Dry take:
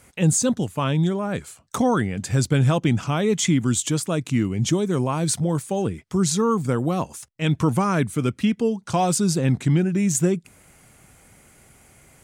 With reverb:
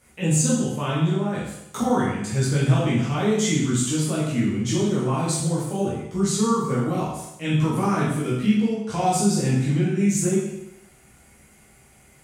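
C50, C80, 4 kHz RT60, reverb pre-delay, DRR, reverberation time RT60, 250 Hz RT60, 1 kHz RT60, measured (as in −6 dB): 1.0 dB, 4.5 dB, 0.80 s, 10 ms, −8.0 dB, 0.85 s, 0.85 s, 0.80 s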